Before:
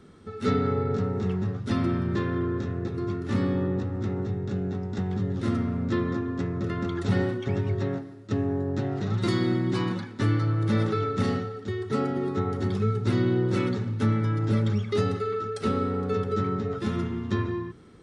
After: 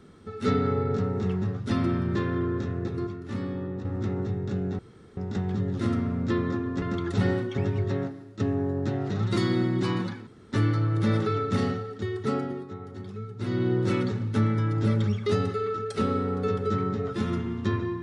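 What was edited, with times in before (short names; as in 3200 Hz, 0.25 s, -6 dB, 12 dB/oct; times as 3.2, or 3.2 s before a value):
3.07–3.85 gain -6.5 dB
4.79 insert room tone 0.38 s
6.44–6.73 cut
10.18 insert room tone 0.25 s
11.82–13.52 dip -12 dB, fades 0.50 s equal-power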